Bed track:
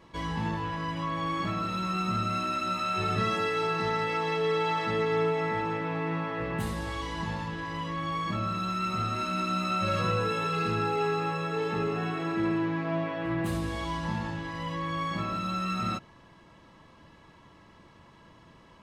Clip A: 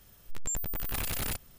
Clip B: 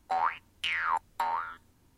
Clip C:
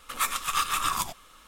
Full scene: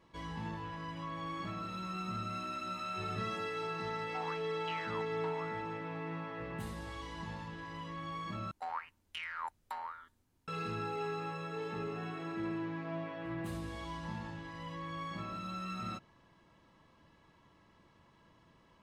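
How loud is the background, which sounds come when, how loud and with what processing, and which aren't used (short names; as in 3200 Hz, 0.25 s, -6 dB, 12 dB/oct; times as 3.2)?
bed track -10 dB
4.04 add B -14.5 dB + Chebyshev low-pass 4200 Hz
8.51 replace with B -11.5 dB
not used: A, C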